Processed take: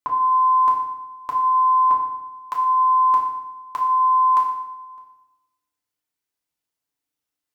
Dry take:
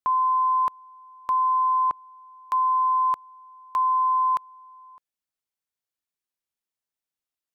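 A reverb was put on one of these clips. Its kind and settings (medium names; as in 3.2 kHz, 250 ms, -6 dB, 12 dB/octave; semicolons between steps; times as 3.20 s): FDN reverb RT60 0.91 s, low-frequency decay 1.3×, high-frequency decay 0.8×, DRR -2.5 dB; trim +1 dB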